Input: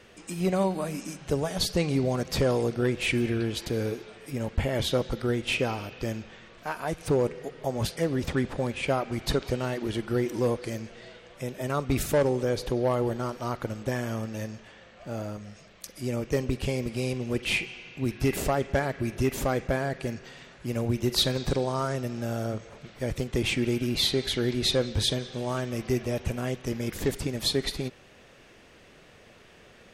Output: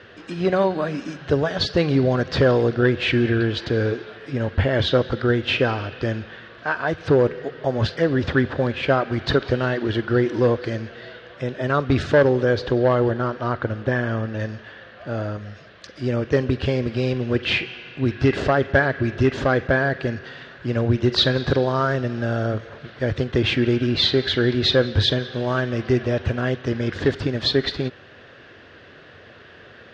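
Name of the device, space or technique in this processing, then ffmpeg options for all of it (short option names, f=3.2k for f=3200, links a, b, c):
guitar cabinet: -filter_complex "[0:a]highpass=79,equalizer=f=95:t=q:w=4:g=5,equalizer=f=190:t=q:w=4:g=-7,equalizer=f=850:t=q:w=4:g=-4,equalizer=f=1.6k:t=q:w=4:g=8,equalizer=f=2.3k:t=q:w=4:g=-6,lowpass=f=4.3k:w=0.5412,lowpass=f=4.3k:w=1.3066,asettb=1/sr,asplit=3[a][b][c];[a]atrim=end=13.114[d];[b]atrim=start=13.11:end=14.4,asetpts=PTS-STARTPTS,afade=t=in:d=0.004:c=qsin,afade=t=out:st=1.286:d=0.004:c=qsin,highshelf=f=5.7k:g=-11.5[e];[c]atrim=start=14.396[f];[d][e]acrossfade=d=0.004:c1=hsin:c2=qsin[g];[g][f]acrossfade=d=0.004:c1=qsin:c2=hsin,volume=8dB"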